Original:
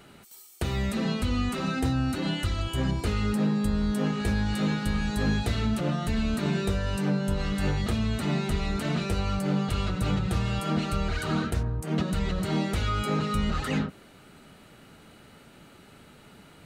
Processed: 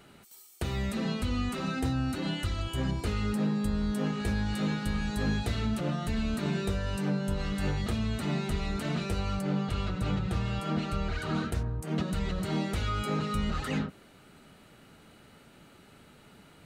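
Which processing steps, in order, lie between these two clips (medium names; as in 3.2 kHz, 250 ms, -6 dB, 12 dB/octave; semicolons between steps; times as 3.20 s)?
9.41–11.35 s: treble shelf 7.3 kHz -8.5 dB; trim -3.5 dB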